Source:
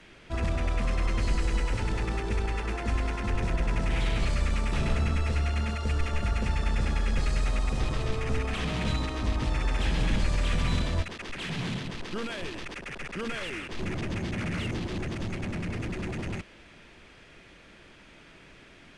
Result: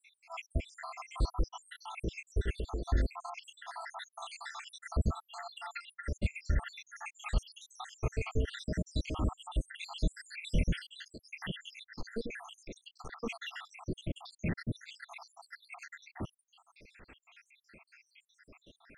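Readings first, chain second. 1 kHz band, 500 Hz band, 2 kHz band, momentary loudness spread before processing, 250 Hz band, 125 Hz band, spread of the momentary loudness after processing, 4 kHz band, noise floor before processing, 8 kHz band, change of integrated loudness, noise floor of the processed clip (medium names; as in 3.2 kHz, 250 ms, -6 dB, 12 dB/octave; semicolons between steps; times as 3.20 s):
-8.0 dB, -8.0 dB, -9.0 dB, 7 LU, -8.5 dB, -8.5 dB, 14 LU, -8.5 dB, -53 dBFS, -8.0 dB, -8.5 dB, -81 dBFS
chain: random holes in the spectrogram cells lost 84%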